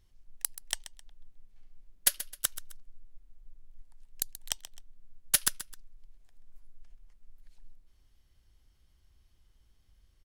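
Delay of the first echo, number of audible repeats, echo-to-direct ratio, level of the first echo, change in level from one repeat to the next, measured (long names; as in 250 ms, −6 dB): 131 ms, 2, −13.5 dB, −14.0 dB, −9.5 dB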